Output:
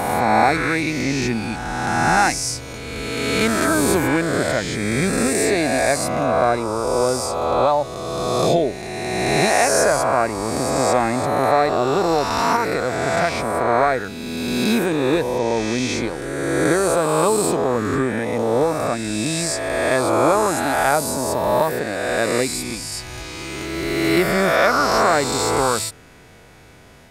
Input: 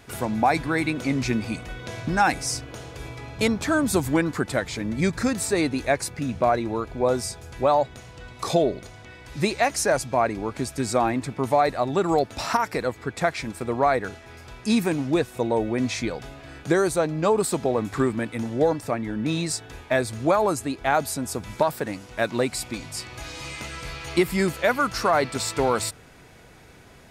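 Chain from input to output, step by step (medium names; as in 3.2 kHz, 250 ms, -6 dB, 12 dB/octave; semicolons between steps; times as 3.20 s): reverse spectral sustain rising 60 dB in 2.26 s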